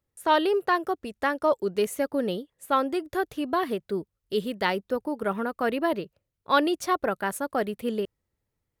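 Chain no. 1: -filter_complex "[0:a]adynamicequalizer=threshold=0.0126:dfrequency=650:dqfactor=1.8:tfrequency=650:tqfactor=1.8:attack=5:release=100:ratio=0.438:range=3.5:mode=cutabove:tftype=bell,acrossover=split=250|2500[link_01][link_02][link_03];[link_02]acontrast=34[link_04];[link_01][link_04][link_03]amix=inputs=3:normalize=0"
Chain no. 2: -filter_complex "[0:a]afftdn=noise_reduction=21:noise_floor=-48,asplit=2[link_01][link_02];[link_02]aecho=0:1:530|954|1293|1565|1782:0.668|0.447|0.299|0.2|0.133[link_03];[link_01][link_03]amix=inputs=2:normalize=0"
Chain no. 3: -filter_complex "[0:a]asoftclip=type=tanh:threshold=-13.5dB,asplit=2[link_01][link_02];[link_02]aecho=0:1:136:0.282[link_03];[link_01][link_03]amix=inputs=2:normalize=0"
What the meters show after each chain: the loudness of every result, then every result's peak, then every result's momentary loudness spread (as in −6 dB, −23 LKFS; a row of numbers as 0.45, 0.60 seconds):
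−23.5, −25.0, −28.0 LKFS; −5.0, −8.0, −14.0 dBFS; 9, 5, 8 LU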